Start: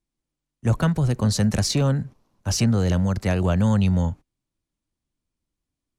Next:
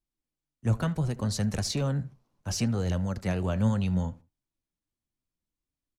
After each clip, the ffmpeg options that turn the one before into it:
-filter_complex "[0:a]flanger=delay=1:depth=8.4:regen=70:speed=0.69:shape=triangular,asplit=2[s0][s1];[s1]adelay=77,lowpass=f=2600:p=1,volume=0.1,asplit=2[s2][s3];[s3]adelay=77,lowpass=f=2600:p=1,volume=0.24[s4];[s0][s2][s4]amix=inputs=3:normalize=0,volume=0.708"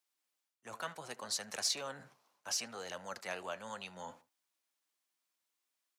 -af "areverse,acompressor=threshold=0.0158:ratio=6,areverse,highpass=780,volume=2.51"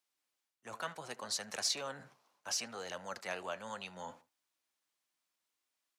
-af "highshelf=f=9600:g=-5,volume=1.12"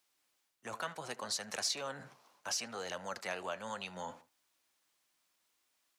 -af "acompressor=threshold=0.00158:ratio=1.5,volume=2.51"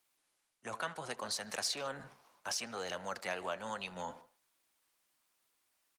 -filter_complex "[0:a]asplit=2[s0][s1];[s1]adelay=150,highpass=300,lowpass=3400,asoftclip=type=hard:threshold=0.0299,volume=0.112[s2];[s0][s2]amix=inputs=2:normalize=0,volume=1.19" -ar 48000 -c:a libopus -b:a 32k

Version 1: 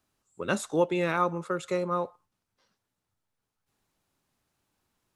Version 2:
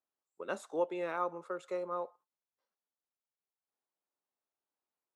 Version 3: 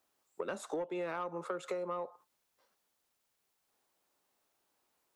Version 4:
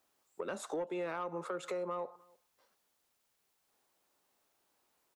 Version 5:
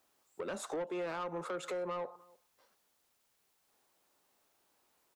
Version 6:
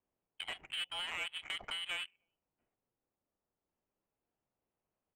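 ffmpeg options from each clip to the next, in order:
-af "highpass=570,agate=range=0.398:threshold=0.00158:ratio=16:detection=peak,tiltshelf=f=1100:g=8,volume=0.398"
-filter_complex "[0:a]acrossover=split=170[s0][s1];[s1]acompressor=threshold=0.00501:ratio=2[s2];[s0][s2]amix=inputs=2:normalize=0,asoftclip=type=tanh:threshold=0.0211,acompressor=threshold=0.00316:ratio=6,volume=5.62"
-filter_complex "[0:a]asplit=2[s0][s1];[s1]alimiter=level_in=3.35:limit=0.0631:level=0:latency=1:release=74,volume=0.299,volume=1.33[s2];[s0][s2]amix=inputs=2:normalize=0,asplit=2[s3][s4];[s4]adelay=303.2,volume=0.0447,highshelf=f=4000:g=-6.82[s5];[s3][s5]amix=inputs=2:normalize=0,volume=0.531"
-af "asoftclip=type=tanh:threshold=0.0188,volume=1.33"
-af "lowpass=f=3000:t=q:w=0.5098,lowpass=f=3000:t=q:w=0.6013,lowpass=f=3000:t=q:w=0.9,lowpass=f=3000:t=q:w=2.563,afreqshift=-3500,adynamicsmooth=sensitivity=7.5:basefreq=500,highshelf=f=2400:g=-8,volume=2.24"

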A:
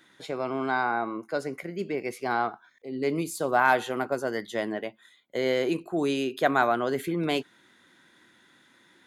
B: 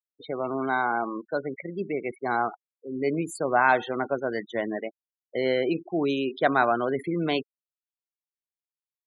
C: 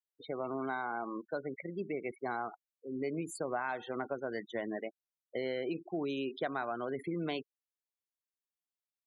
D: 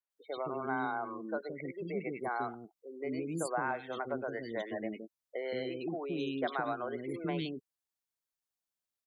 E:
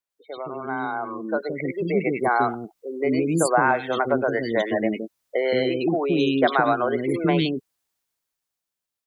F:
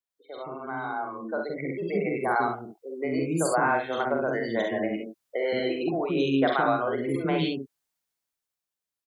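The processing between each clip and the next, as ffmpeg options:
-af "afftfilt=real='re*gte(hypot(re,im),0.0224)':imag='im*gte(hypot(re,im),0.0224)':win_size=1024:overlap=0.75,volume=1.12"
-af "acompressor=threshold=0.0501:ratio=6,volume=0.501"
-filter_complex "[0:a]acrossover=split=390|2400[s0][s1][s2];[s2]adelay=100[s3];[s0]adelay=170[s4];[s4][s1][s3]amix=inputs=3:normalize=0,volume=1.33"
-af "dynaudnorm=f=200:g=13:m=3.55,volume=1.58"
-af "aecho=1:1:44|66:0.531|0.501,volume=0.501"

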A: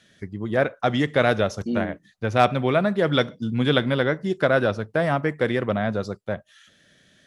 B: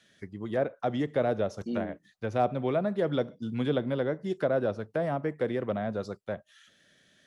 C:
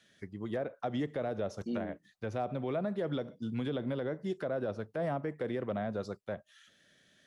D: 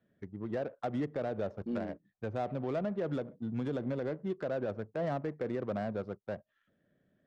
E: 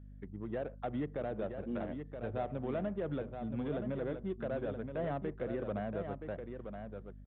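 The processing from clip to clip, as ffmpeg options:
-filter_complex "[0:a]lowshelf=f=170:g=-6.5,acrossover=split=690|710[s0][s1][s2];[s2]acompressor=threshold=0.0141:ratio=6[s3];[s0][s1][s3]amix=inputs=3:normalize=0,volume=0.562"
-af "alimiter=limit=0.0708:level=0:latency=1:release=65,volume=0.75"
-af "adynamicsmooth=sensitivity=7.5:basefreq=760"
-af "aecho=1:1:973:0.447,aeval=exprs='val(0)+0.00447*(sin(2*PI*50*n/s)+sin(2*PI*2*50*n/s)/2+sin(2*PI*3*50*n/s)/3+sin(2*PI*4*50*n/s)/4+sin(2*PI*5*50*n/s)/5)':c=same,aresample=8000,aresample=44100,volume=0.708"

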